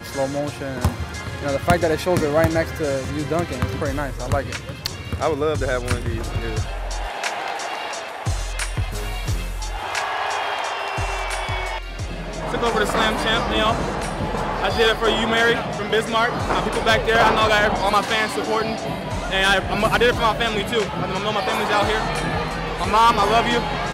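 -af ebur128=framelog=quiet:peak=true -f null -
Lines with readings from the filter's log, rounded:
Integrated loudness:
  I:         -21.3 LUFS
  Threshold: -31.3 LUFS
Loudness range:
  LRA:         7.3 LU
  Threshold: -41.4 LUFS
  LRA low:   -25.8 LUFS
  LRA high:  -18.5 LUFS
True peak:
  Peak:       -5.2 dBFS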